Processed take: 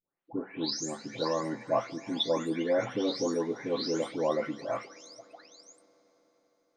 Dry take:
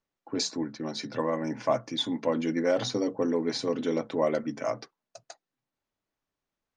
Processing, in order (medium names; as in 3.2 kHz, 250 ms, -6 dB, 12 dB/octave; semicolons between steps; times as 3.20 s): delay that grows with frequency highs late, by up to 482 ms; bass shelf 100 Hz -9 dB; on a send: reverberation RT60 5.1 s, pre-delay 10 ms, DRR 20 dB